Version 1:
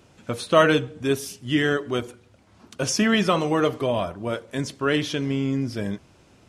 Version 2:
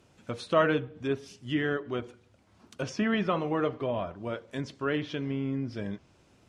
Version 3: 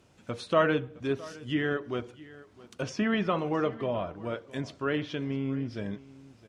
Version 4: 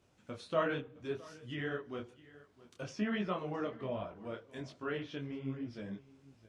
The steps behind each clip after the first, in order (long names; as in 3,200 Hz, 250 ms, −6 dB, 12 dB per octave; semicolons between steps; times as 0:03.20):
treble cut that deepens with the level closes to 2,500 Hz, closed at −20.5 dBFS; level −7 dB
single-tap delay 663 ms −20 dB
micro pitch shift up and down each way 43 cents; level −5 dB